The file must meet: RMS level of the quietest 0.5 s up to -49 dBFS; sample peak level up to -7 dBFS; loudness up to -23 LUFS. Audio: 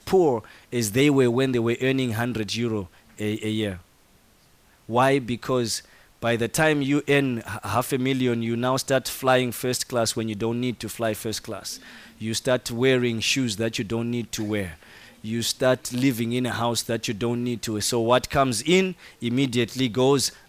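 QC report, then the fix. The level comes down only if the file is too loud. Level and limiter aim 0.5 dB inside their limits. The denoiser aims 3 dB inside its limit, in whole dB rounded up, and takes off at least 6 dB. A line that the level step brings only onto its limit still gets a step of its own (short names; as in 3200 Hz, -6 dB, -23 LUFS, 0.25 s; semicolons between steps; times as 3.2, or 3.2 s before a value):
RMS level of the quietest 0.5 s -58 dBFS: OK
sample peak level -6.0 dBFS: fail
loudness -24.0 LUFS: OK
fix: limiter -7.5 dBFS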